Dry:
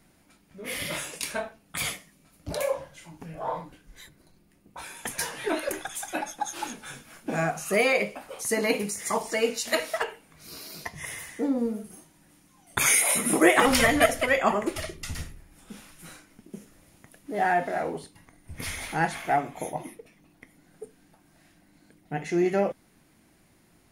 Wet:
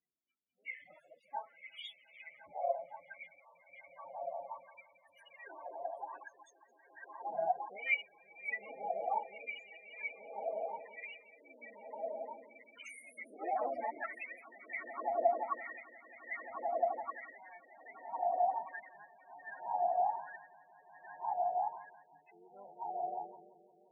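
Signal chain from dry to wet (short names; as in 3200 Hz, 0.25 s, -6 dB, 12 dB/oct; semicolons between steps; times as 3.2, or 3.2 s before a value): harmoniser +4 st -5 dB; swelling echo 0.175 s, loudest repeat 8, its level -8 dB; loudest bins only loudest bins 16; wah 0.64 Hz 690–3700 Hz, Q 13; gain +1 dB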